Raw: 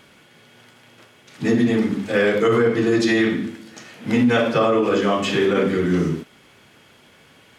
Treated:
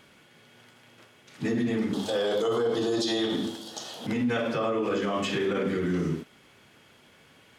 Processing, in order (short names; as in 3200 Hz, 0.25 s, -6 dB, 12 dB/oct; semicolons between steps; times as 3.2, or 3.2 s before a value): 1.93–4.07 EQ curve 220 Hz 0 dB, 800 Hz +13 dB, 2300 Hz -7 dB, 3300 Hz +15 dB, 6900 Hz +11 dB; limiter -14 dBFS, peak gain reduction 12.5 dB; gain -5.5 dB